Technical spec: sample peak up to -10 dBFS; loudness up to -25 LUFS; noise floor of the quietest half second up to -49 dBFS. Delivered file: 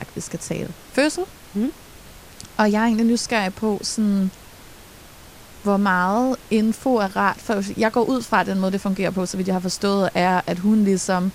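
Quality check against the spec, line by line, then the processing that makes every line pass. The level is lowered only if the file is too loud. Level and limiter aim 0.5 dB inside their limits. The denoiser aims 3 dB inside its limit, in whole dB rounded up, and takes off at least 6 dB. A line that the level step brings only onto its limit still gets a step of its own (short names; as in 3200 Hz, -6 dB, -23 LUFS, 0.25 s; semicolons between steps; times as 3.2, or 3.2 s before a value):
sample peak -4.0 dBFS: fail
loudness -21.0 LUFS: fail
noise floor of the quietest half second -44 dBFS: fail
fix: denoiser 6 dB, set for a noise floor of -44 dBFS; gain -4.5 dB; limiter -10.5 dBFS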